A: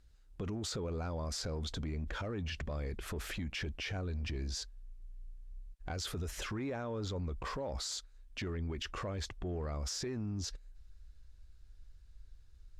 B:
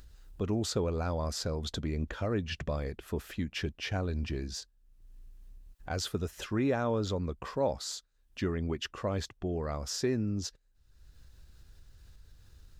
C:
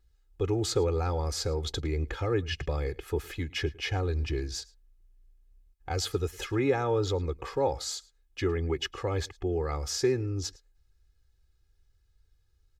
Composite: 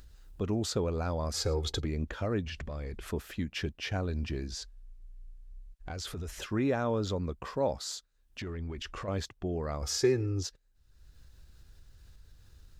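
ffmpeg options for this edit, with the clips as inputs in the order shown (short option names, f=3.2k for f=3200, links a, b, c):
-filter_complex "[2:a]asplit=2[a][b];[0:a]asplit=3[c][d][e];[1:a]asplit=6[f][g][h][i][j][k];[f]atrim=end=1.342[l];[a]atrim=start=1.338:end=1.852[m];[g]atrim=start=1.848:end=2.462[n];[c]atrim=start=2.458:end=3.112[o];[h]atrim=start=3.108:end=4.522[p];[d]atrim=start=4.518:end=6.392[q];[i]atrim=start=6.388:end=8.402[r];[e]atrim=start=8.398:end=9.082[s];[j]atrim=start=9.078:end=9.822[t];[b]atrim=start=9.818:end=10.432[u];[k]atrim=start=10.428[v];[l][m]acrossfade=d=0.004:c1=hsin:c2=hsin[w];[w][n]acrossfade=d=0.004:c1=hsin:c2=hsin[x];[x][o]acrossfade=d=0.004:c1=hsin:c2=hsin[y];[y][p]acrossfade=d=0.004:c1=hsin:c2=hsin[z];[z][q]acrossfade=d=0.004:c1=hsin:c2=hsin[aa];[aa][r]acrossfade=d=0.004:c1=hsin:c2=hsin[ab];[ab][s]acrossfade=d=0.004:c1=hsin:c2=hsin[ac];[ac][t]acrossfade=d=0.004:c1=hsin:c2=hsin[ad];[ad][u]acrossfade=d=0.004:c1=hsin:c2=hsin[ae];[ae][v]acrossfade=d=0.004:c1=hsin:c2=hsin"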